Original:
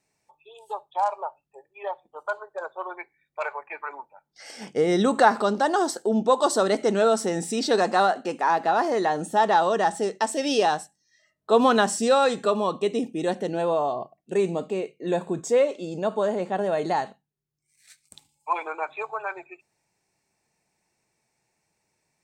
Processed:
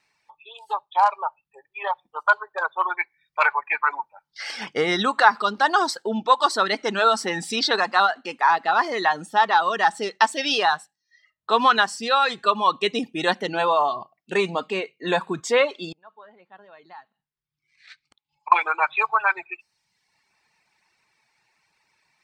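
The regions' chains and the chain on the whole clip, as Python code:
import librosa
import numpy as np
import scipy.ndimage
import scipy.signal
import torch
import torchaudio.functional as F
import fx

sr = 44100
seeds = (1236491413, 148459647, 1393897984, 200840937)

y = fx.chain(x, sr, fx.gate_flip(shuts_db=-30.0, range_db=-25),
    fx.air_absorb(metres=160.0), at=(15.92, 18.52))
y = fx.dereverb_blind(y, sr, rt60_s=0.86)
y = fx.band_shelf(y, sr, hz=2100.0, db=13.5, octaves=2.8)
y = fx.rider(y, sr, range_db=4, speed_s=0.5)
y = F.gain(torch.from_numpy(y), -3.5).numpy()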